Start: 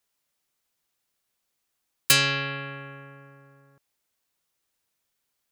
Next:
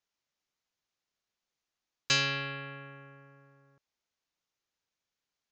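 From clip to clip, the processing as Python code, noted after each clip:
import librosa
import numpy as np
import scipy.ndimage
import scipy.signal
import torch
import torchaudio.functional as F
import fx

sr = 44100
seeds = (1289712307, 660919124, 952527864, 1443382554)

y = scipy.signal.sosfilt(scipy.signal.butter(12, 6900.0, 'lowpass', fs=sr, output='sos'), x)
y = y * 10.0 ** (-6.5 / 20.0)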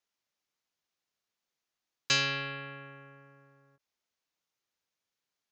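y = fx.low_shelf(x, sr, hz=75.0, db=-8.5)
y = fx.end_taper(y, sr, db_per_s=550.0)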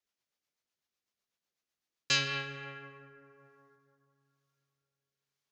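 y = fx.rotary_switch(x, sr, hz=8.0, then_hz=1.1, switch_at_s=1.79)
y = fx.rev_plate(y, sr, seeds[0], rt60_s=3.1, hf_ratio=0.35, predelay_ms=0, drr_db=10.5)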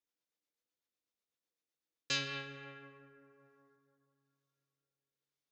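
y = fx.small_body(x, sr, hz=(310.0, 480.0, 3600.0), ring_ms=55, db=10)
y = y * 10.0 ** (-7.0 / 20.0)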